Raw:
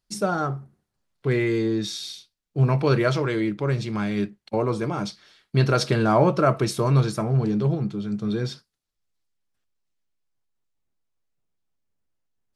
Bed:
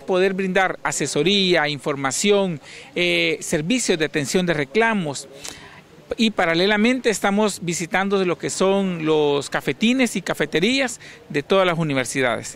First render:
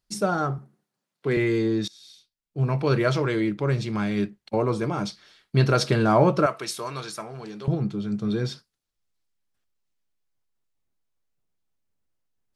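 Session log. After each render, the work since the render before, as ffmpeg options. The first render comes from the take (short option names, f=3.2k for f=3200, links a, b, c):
-filter_complex "[0:a]asettb=1/sr,asplit=3[a][b][c];[a]atrim=end=0.584[d];[b]atrim=start=0.58:end=1.37,asetpts=PTS-STARTPTS,afade=t=in:d=0.004:c=qsin,afade=t=out:st=0.786:d=0.004:c=qsin,highpass=f=150:w=0.5412,highpass=f=150:w=1.3066[e];[c]atrim=start=1.366[f];[d][e]acrossfade=d=0.004:c1=hsin:c2=qsin[g];[g][f]acrossfade=d=0.004:c1=qsin:c2=hsin,asettb=1/sr,asplit=3[h][i][j];[h]atrim=end=6.464[k];[i]atrim=start=6.46:end=7.68,asetpts=PTS-STARTPTS,afade=t=in:d=0.004:c=qsin,afade=t=out:st=1.216:d=0.004:c=qsin,highpass=f=1.4k:p=1[l];[j]atrim=start=7.676[m];[k][l]acrossfade=d=0.004:c1=hsin:c2=qsin[n];[n][m]acrossfade=d=0.004:c1=qsin:c2=hsin,asplit=2[o][p];[o]atrim=end=1.88,asetpts=PTS-STARTPTS,afade=t=out:st=1.876:d=0.004:c=hsin:silence=0.0749894[q];[p]atrim=start=1.88,asetpts=PTS-STARTPTS,afade=t=in:d=1.32:silence=0.0749894[r];[q][r]concat=n=2:v=0:a=1"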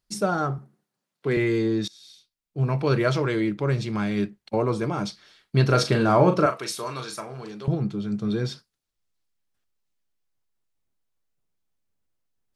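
-filter_complex "[0:a]asettb=1/sr,asplit=3[a][b][c];[a]atrim=end=5.664[d];[b]atrim=start=5.66:end=7.52,asetpts=PTS-STARTPTS,afade=t=in:d=0.004:c=qsin,afade=t=out:st=1.856:d=0.004:c=qsin,asplit=2[e][f];[f]adelay=39,volume=-8dB[g];[e][g]amix=inputs=2:normalize=0,atrim=end_sample=82026[h];[c]atrim=start=7.516[i];[d][h]acrossfade=d=0.004:c1=hsin:c2=qsin[j];[j][i]acrossfade=d=0.004:c1=qsin:c2=hsin"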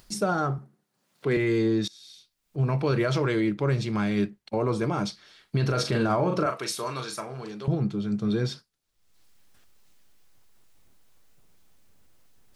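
-af "alimiter=limit=-15.5dB:level=0:latency=1:release=59,acompressor=mode=upward:threshold=-40dB:ratio=2.5"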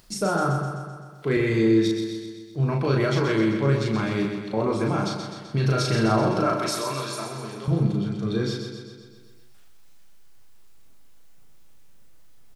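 -filter_complex "[0:a]asplit=2[a][b];[b]adelay=36,volume=-3dB[c];[a][c]amix=inputs=2:normalize=0,asplit=2[d][e];[e]aecho=0:1:128|256|384|512|640|768|896|1024:0.473|0.284|0.17|0.102|0.0613|0.0368|0.0221|0.0132[f];[d][f]amix=inputs=2:normalize=0"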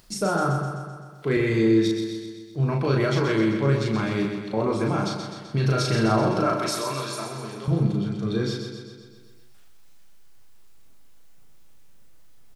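-af anull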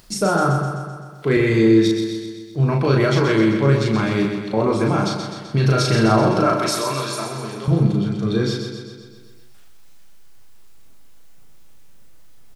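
-af "volume=5.5dB"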